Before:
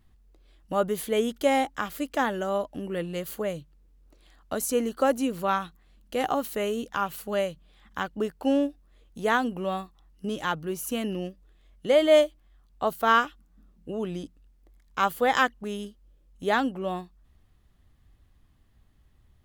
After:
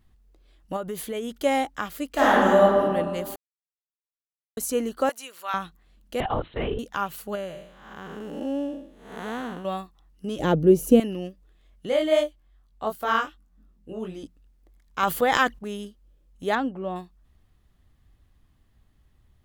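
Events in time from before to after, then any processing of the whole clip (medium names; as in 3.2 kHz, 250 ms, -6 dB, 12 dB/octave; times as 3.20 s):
0.76–1.44 s: compression, threshold -27 dBFS
2.13–2.79 s: reverb throw, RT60 1.7 s, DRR -9 dB
3.36–4.57 s: mute
5.09–5.54 s: high-pass 1.2 kHz
6.20–6.79 s: LPC vocoder at 8 kHz whisper
7.35–9.65 s: spectral blur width 306 ms
10.39–11.00 s: resonant low shelf 730 Hz +13.5 dB, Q 1.5
11.89–14.23 s: chorus 2.6 Hz, delay 20 ms, depth 3.1 ms
15.03–15.59 s: transient shaper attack +3 dB, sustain +9 dB
16.55–16.96 s: low-pass 1.6 kHz 6 dB/octave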